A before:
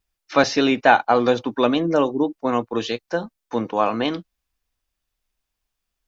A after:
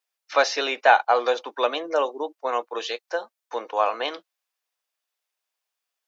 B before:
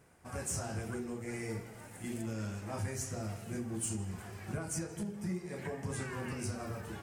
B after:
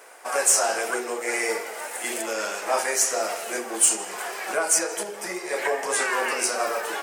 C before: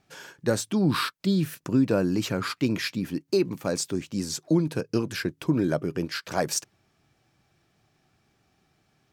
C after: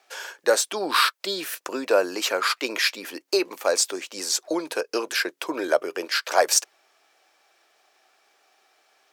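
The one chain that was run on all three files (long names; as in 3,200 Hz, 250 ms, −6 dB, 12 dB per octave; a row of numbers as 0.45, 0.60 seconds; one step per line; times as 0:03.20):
high-pass filter 480 Hz 24 dB per octave
loudness normalisation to −24 LKFS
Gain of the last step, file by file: −1.5, +19.5, +8.5 decibels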